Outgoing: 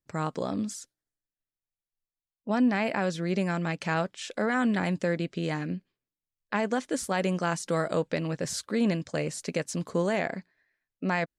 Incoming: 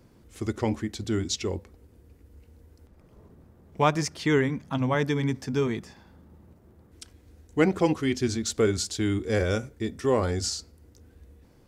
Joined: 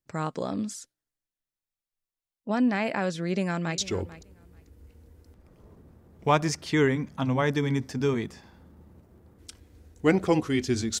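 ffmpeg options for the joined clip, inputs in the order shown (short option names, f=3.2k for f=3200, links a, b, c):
-filter_complex "[0:a]apad=whole_dur=11,atrim=end=11,atrim=end=3.782[a];[1:a]atrim=start=1.308:end=8.53[b];[a][b]acrossfade=d=0.004:c1=hsin:c2=hsin,asplit=2[c][d];[d]afade=t=in:st=3.23:d=0.01,afade=t=out:st=3.78:d=0.01,aecho=0:1:440|880:0.149624|0.0224435[e];[c][e]amix=inputs=2:normalize=0"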